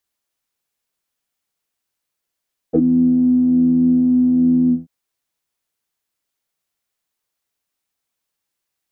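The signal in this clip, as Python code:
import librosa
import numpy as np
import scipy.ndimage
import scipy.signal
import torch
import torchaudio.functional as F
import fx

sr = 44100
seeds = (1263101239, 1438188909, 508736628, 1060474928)

y = fx.sub_patch_pwm(sr, seeds[0], note=52, wave2='square', interval_st=7, detune_cents=26, level2_db=-3, sub_db=-15.0, noise_db=-30.0, kind='lowpass', cutoff_hz=190.0, q=9.6, env_oct=1.5, env_decay_s=0.07, env_sustain_pct=30, attack_ms=30.0, decay_s=0.05, sustain_db=-9.5, release_s=0.18, note_s=1.96, lfo_hz=1.2, width_pct=15, width_swing_pct=9)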